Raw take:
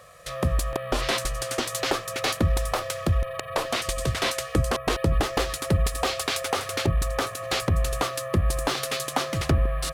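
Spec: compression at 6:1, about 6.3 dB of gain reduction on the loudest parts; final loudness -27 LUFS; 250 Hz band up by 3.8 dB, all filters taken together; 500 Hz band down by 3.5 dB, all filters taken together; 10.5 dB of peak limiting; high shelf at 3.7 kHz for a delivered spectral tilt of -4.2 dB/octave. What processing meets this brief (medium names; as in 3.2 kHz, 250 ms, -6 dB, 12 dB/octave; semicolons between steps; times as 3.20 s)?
peaking EQ 250 Hz +7 dB; peaking EQ 500 Hz -6 dB; treble shelf 3.7 kHz -5 dB; compression 6:1, threshold -23 dBFS; trim +6 dB; peak limiter -16.5 dBFS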